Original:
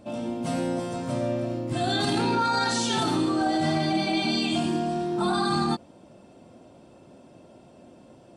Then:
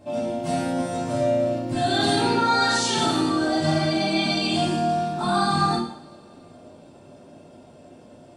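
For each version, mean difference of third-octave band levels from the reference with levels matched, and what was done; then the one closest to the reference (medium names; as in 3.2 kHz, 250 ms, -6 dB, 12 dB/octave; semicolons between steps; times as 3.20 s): 2.5 dB: two-slope reverb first 0.6 s, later 2.8 s, from -26 dB, DRR -5 dB; trim -2.5 dB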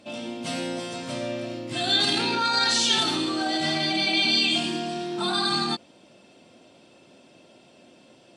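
4.5 dB: frequency weighting D; trim -2.5 dB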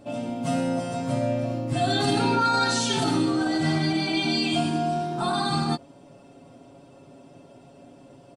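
1.5 dB: comb 7.2 ms, depth 69%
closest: third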